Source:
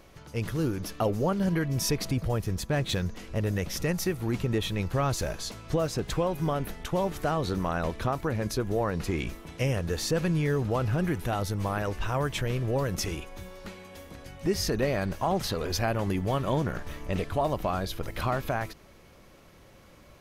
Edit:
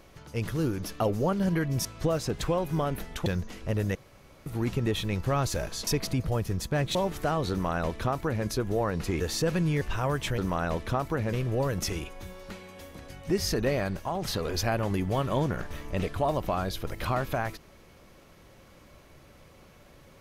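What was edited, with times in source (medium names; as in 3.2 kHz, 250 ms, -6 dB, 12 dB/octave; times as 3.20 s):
1.85–2.93 s: swap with 5.54–6.95 s
3.62–4.13 s: room tone
7.51–8.46 s: copy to 12.49 s
9.20–9.89 s: delete
10.50–11.92 s: delete
14.93–15.38 s: fade out, to -6.5 dB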